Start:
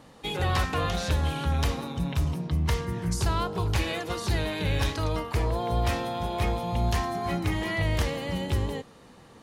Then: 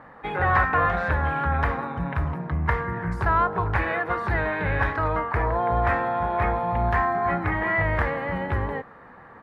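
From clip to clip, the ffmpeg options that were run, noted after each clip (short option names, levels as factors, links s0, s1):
-af "firequalizer=gain_entry='entry(320,0);entry(750,8);entry(1700,13);entry(2900,-10);entry(6100,-25);entry(13000,-20)':delay=0.05:min_phase=1"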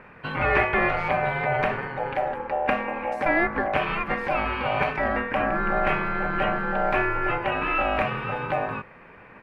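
-af "aeval=exprs='val(0)*sin(2*PI*680*n/s)':c=same,volume=1.26"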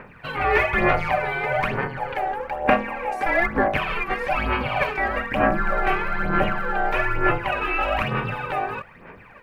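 -af "crystalizer=i=1.5:c=0,aphaser=in_gain=1:out_gain=1:delay=2.6:decay=0.63:speed=1.1:type=sinusoidal,volume=0.841"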